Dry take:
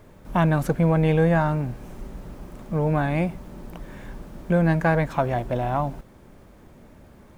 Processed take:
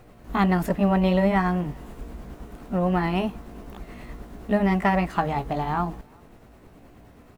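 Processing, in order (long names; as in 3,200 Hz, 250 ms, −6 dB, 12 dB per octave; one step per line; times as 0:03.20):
pitch shift by two crossfaded delay taps +3 semitones
far-end echo of a speakerphone 380 ms, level −30 dB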